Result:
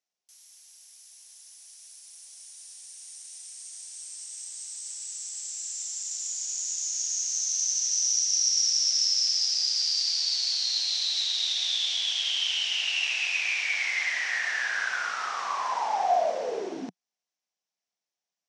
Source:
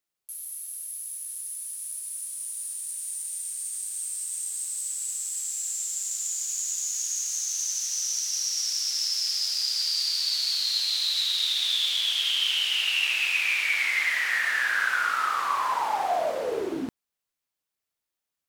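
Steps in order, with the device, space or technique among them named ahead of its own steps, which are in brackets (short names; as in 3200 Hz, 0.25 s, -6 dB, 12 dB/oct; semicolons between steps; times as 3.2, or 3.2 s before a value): 8.11–9.12 HPF 1200 Hz -> 290 Hz 12 dB/oct; television speaker (speaker cabinet 180–7300 Hz, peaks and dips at 180 Hz +3 dB, 310 Hz -5 dB, 720 Hz +7 dB, 1300 Hz -5 dB, 5700 Hz +9 dB); gain -3 dB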